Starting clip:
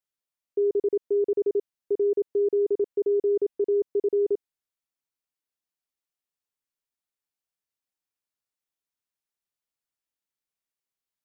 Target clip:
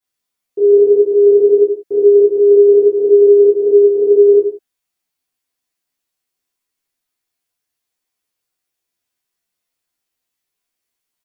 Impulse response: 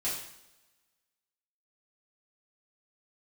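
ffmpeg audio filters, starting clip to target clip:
-filter_complex "[0:a]asplit=2[a][b];[b]adelay=12,volume=-2.5dB[c];[a][c]amix=inputs=2:normalize=0[d];[1:a]atrim=start_sample=2205,afade=t=out:st=0.27:d=0.01,atrim=end_sample=12348[e];[d][e]afir=irnorm=-1:irlink=0,volume=5dB"

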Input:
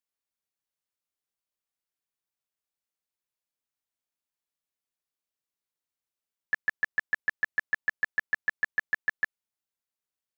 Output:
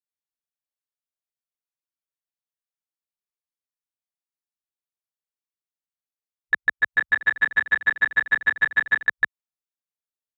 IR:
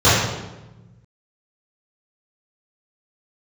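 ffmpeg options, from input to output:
-filter_complex "[0:a]afwtdn=0.00447,asplit=3[a][b][c];[a]afade=t=out:st=6.81:d=0.02[d];[b]aecho=1:1:290|478.5|601|680.7|732.4:0.631|0.398|0.251|0.158|0.1,afade=t=in:st=6.81:d=0.02,afade=t=out:st=9.05:d=0.02[e];[c]afade=t=in:st=9.05:d=0.02[f];[d][e][f]amix=inputs=3:normalize=0,volume=7.5dB"

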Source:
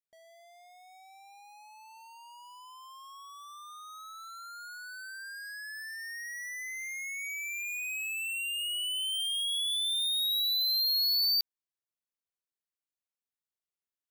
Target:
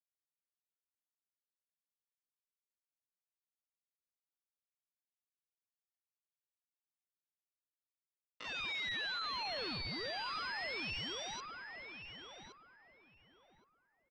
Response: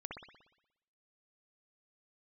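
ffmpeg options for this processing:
-filter_complex "[0:a]equalizer=f=1.1k:t=o:w=2.3:g=-6,acompressor=threshold=-35dB:ratio=20,afreqshift=150,aresample=11025,acrusher=bits=5:mix=0:aa=0.000001,aresample=44100,asoftclip=type=tanh:threshold=-36dB,asetrate=53981,aresample=44100,atempo=0.816958,asplit=2[a][b];[b]highpass=f=720:p=1,volume=17dB,asoftclip=type=tanh:threshold=-35.5dB[c];[a][c]amix=inputs=2:normalize=0,lowpass=f=2.4k:p=1,volume=-6dB,lowpass=f=3.1k:t=q:w=1.8,asplit=2[d][e];[e]adelay=1119,lowpass=f=1.5k:p=1,volume=-3dB,asplit=2[f][g];[g]adelay=1119,lowpass=f=1.5k:p=1,volume=0.26,asplit=2[h][i];[i]adelay=1119,lowpass=f=1.5k:p=1,volume=0.26,asplit=2[j][k];[k]adelay=1119,lowpass=f=1.5k:p=1,volume=0.26[l];[f][h][j][l]amix=inputs=4:normalize=0[m];[d][m]amix=inputs=2:normalize=0,volume=3dB"

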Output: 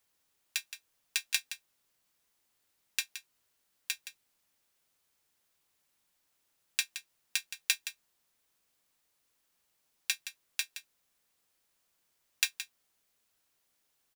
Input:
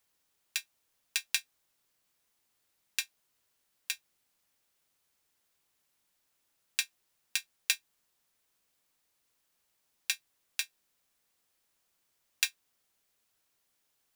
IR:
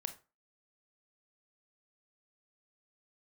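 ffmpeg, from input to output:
-af "aecho=1:1:170:0.266"

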